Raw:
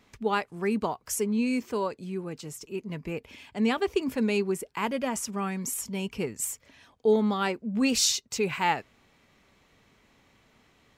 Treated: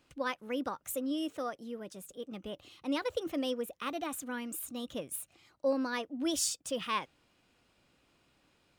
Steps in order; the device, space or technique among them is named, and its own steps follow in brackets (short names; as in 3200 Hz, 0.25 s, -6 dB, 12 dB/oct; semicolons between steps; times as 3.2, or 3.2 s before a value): nightcore (varispeed +25%); gain -7.5 dB